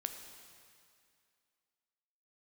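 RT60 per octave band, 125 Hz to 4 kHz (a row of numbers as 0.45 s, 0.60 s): 2.1 s, 2.3 s, 2.3 s, 2.4 s, 2.3 s, 2.2 s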